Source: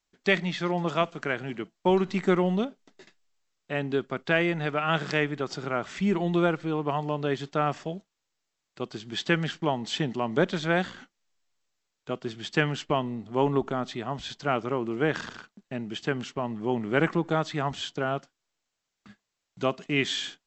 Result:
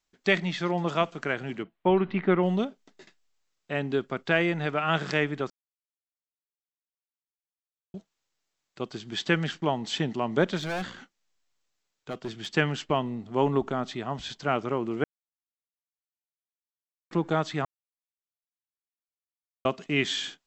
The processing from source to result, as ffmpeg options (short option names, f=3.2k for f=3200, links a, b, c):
-filter_complex "[0:a]asettb=1/sr,asplit=3[a][b][c];[a]atrim=end=1.634[d];[b]atrim=start=1.63:end=2.43,asetpts=PTS-STARTPTS,afade=t=in:d=0.004:c=qsin,afade=t=out:st=0.796:d=0.004:c=qsin,lowpass=f=3.1k:w=0.5412,lowpass=f=3.1k:w=1.3066[e];[c]atrim=start=2.426[f];[d][e]acrossfade=d=0.004:c1=hsin:c2=qsin[g];[g][f]acrossfade=d=0.004:c1=qsin:c2=hsin,asettb=1/sr,asplit=3[h][i][j];[h]atrim=end=10.574[k];[i]atrim=start=10.57:end=12.47,asetpts=PTS-STARTPTS,afade=t=in:d=0.004:c=qsin,afade=t=out:st=1.896:d=0.004:c=qsin,volume=28dB,asoftclip=hard,volume=-28dB[l];[j]atrim=start=12.466[m];[k][l]acrossfade=d=0.004:c1=hsin:c2=qsin[n];[n][m]acrossfade=d=0.004:c1=qsin:c2=hsin,asplit=7[o][p][q][r][s][t][u];[o]atrim=end=5.5,asetpts=PTS-STARTPTS,afade=t=out:st=5.496:d=0.004:c=hsin[v];[p]atrim=start=5.5:end=7.94,asetpts=PTS-STARTPTS,volume=0[w];[q]atrim=start=7.94:end=15.04,asetpts=PTS-STARTPTS,afade=t=in:d=0.004:c=hsin,afade=t=out:st=7.096:d=0.004:c=hsin[x];[r]atrim=start=15.04:end=17.11,asetpts=PTS-STARTPTS,volume=0[y];[s]atrim=start=17.11:end=17.65,asetpts=PTS-STARTPTS,afade=t=in:d=0.004:c=hsin,afade=t=out:st=0.536:d=0.004:c=hsin[z];[t]atrim=start=17.65:end=19.65,asetpts=PTS-STARTPTS,volume=0[aa];[u]atrim=start=19.65,asetpts=PTS-STARTPTS,afade=t=in:d=0.004:c=hsin[ab];[v][w][x][y][z][aa][ab]concat=n=7:v=0:a=1"